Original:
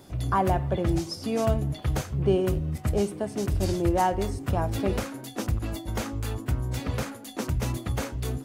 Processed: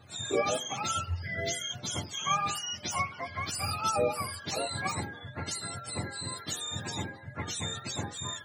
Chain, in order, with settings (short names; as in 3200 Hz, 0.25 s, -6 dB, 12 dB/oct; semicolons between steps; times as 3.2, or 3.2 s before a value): spectrum mirrored in octaves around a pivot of 670 Hz; 1.22–1.7 elliptic band-stop 630–1400 Hz, stop band 40 dB; gain -3 dB